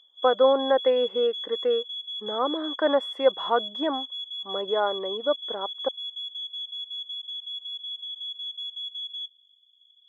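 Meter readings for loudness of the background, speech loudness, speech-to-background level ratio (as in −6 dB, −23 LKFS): −33.0 LKFS, −26.0 LKFS, 7.0 dB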